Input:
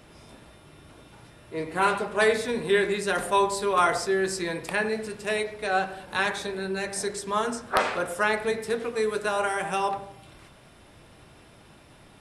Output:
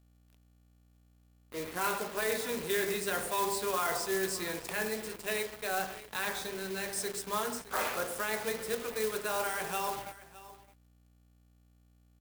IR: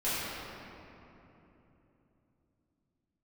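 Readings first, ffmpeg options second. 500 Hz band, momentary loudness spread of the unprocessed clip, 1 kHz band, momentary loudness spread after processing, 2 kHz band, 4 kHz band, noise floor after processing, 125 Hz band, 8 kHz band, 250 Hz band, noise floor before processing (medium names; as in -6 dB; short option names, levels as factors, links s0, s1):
-8.5 dB, 8 LU, -9.0 dB, 6 LU, -8.0 dB, -5.0 dB, -65 dBFS, -8.5 dB, -1.0 dB, -8.5 dB, -53 dBFS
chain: -filter_complex "[0:a]bandreject=f=49.33:t=h:w=4,bandreject=f=98.66:t=h:w=4,bandreject=f=147.99:t=h:w=4,bandreject=f=197.32:t=h:w=4,bandreject=f=246.65:t=h:w=4,bandreject=f=295.98:t=h:w=4,bandreject=f=345.31:t=h:w=4,bandreject=f=394.64:t=h:w=4,bandreject=f=443.97:t=h:w=4,bandreject=f=493.3:t=h:w=4,bandreject=f=542.63:t=h:w=4,bandreject=f=591.96:t=h:w=4,bandreject=f=641.29:t=h:w=4,bandreject=f=690.62:t=h:w=4,bandreject=f=739.95:t=h:w=4,bandreject=f=789.28:t=h:w=4,bandreject=f=838.61:t=h:w=4,bandreject=f=887.94:t=h:w=4,bandreject=f=937.27:t=h:w=4,bandreject=f=986.6:t=h:w=4,bandreject=f=1035.93:t=h:w=4,bandreject=f=1085.26:t=h:w=4,alimiter=limit=0.141:level=0:latency=1:release=12,lowshelf=f=200:g=-3.5,asplit=2[s0][s1];[1:a]atrim=start_sample=2205,asetrate=37926,aresample=44100[s2];[s1][s2]afir=irnorm=-1:irlink=0,volume=0.0237[s3];[s0][s3]amix=inputs=2:normalize=0,acrusher=bits=5:mix=0:aa=0.5,aecho=1:1:615:0.126,aeval=exprs='val(0)+0.00158*(sin(2*PI*60*n/s)+sin(2*PI*2*60*n/s)/2+sin(2*PI*3*60*n/s)/3+sin(2*PI*4*60*n/s)/4+sin(2*PI*5*60*n/s)/5)':c=same,highshelf=f=5600:g=-7,acrusher=bits=3:mode=log:mix=0:aa=0.000001,crystalizer=i=1.5:c=0,volume=0.473"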